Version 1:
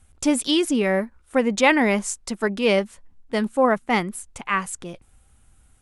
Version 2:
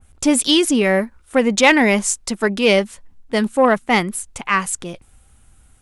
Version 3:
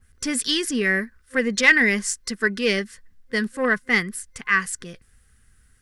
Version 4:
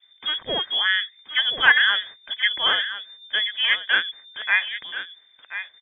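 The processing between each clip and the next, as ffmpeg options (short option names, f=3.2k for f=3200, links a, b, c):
-af "acontrast=49,adynamicequalizer=threshold=0.0501:dfrequency=2100:dqfactor=0.7:tfrequency=2100:tqfactor=0.7:attack=5:release=100:ratio=0.375:range=2:mode=boostabove:tftype=highshelf,volume=-1dB"
-af "aeval=exprs='0.891*(cos(1*acos(clip(val(0)/0.891,-1,1)))-cos(1*PI/2))+0.0398*(cos(2*acos(clip(val(0)/0.891,-1,1)))-cos(2*PI/2))':c=same,superequalizer=6b=0.562:8b=0.316:9b=0.282:11b=2.82:14b=1.78,acrusher=bits=11:mix=0:aa=0.000001,volume=-6.5dB"
-af "aecho=1:1:1030:0.266,lowpass=f=3.1k:t=q:w=0.5098,lowpass=f=3.1k:t=q:w=0.6013,lowpass=f=3.1k:t=q:w=0.9,lowpass=f=3.1k:t=q:w=2.563,afreqshift=-3600"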